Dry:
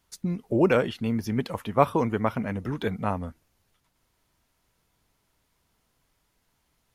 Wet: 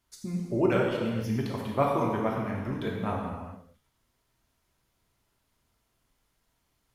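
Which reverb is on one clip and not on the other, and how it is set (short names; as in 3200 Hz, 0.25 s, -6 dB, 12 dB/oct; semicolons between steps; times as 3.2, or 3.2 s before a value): non-linear reverb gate 0.49 s falling, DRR -2 dB; gain -7 dB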